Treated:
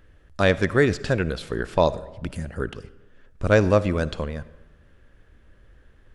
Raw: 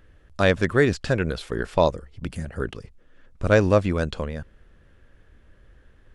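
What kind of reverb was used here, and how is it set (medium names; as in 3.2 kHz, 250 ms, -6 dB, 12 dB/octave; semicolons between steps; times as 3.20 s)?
algorithmic reverb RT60 1.1 s, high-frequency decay 0.6×, pre-delay 20 ms, DRR 16.5 dB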